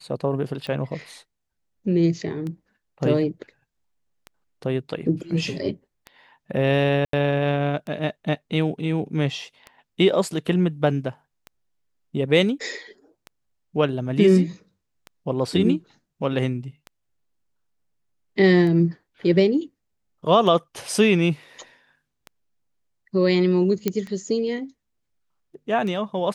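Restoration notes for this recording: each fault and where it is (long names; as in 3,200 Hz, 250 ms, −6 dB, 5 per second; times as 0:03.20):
scratch tick 33 1/3 rpm −21 dBFS
0:07.05–0:07.13: drop-out 83 ms
0:23.88: click −8 dBFS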